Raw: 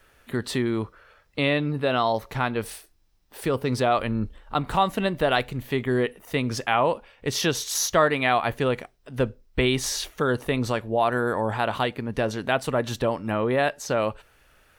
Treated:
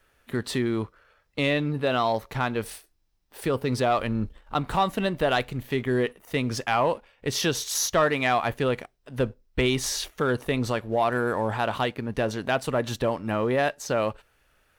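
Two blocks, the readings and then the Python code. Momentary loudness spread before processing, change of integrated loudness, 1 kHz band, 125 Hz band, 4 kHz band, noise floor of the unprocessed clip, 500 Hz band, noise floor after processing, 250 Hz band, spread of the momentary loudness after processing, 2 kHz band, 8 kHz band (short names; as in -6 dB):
7 LU, -1.0 dB, -1.5 dB, -1.0 dB, -1.5 dB, -61 dBFS, -1.0 dB, -67 dBFS, -1.0 dB, 7 LU, -1.5 dB, -1.0 dB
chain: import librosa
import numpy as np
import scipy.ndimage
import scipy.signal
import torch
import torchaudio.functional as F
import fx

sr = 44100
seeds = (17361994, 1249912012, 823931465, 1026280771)

y = fx.leveller(x, sr, passes=1)
y = y * 10.0 ** (-4.5 / 20.0)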